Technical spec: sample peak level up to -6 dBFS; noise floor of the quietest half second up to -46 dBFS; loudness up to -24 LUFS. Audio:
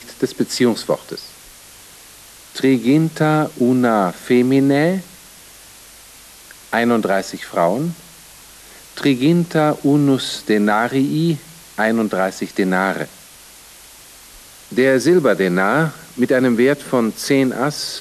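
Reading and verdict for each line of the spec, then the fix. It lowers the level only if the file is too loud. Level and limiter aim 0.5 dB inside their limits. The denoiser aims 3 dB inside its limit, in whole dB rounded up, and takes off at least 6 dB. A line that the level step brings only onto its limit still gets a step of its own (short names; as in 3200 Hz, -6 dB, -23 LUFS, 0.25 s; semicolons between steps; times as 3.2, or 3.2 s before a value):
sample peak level -5.0 dBFS: fail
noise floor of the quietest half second -42 dBFS: fail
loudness -17.0 LUFS: fail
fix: gain -7.5 dB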